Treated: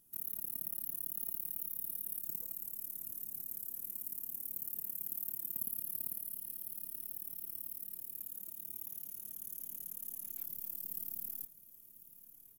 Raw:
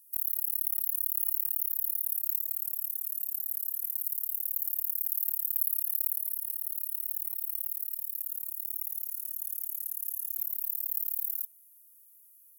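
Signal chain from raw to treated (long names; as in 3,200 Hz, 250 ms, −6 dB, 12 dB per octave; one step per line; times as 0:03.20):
RIAA equalisation playback
repeating echo 1,047 ms, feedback 55%, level −16.5 dB
level +7 dB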